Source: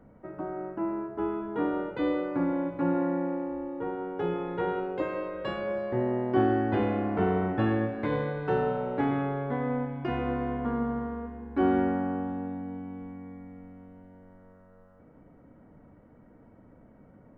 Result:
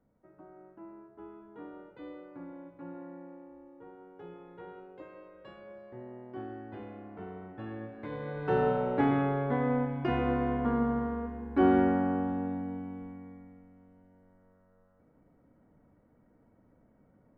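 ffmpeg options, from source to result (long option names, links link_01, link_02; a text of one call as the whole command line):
ffmpeg -i in.wav -af "volume=1dB,afade=type=in:start_time=7.52:duration=0.67:silence=0.421697,afade=type=in:start_time=8.19:duration=0.47:silence=0.281838,afade=type=out:start_time=12.55:duration=1.1:silence=0.298538" out.wav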